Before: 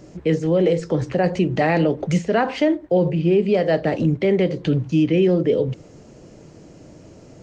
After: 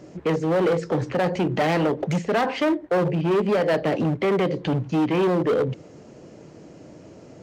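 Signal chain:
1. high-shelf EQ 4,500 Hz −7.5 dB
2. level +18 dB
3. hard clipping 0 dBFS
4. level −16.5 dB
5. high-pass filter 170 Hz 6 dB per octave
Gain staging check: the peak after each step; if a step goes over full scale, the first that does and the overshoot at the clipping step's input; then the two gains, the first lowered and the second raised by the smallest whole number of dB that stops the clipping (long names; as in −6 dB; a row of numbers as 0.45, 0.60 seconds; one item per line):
−9.0, +9.0, 0.0, −16.5, −12.5 dBFS
step 2, 9.0 dB
step 2 +9 dB, step 4 −7.5 dB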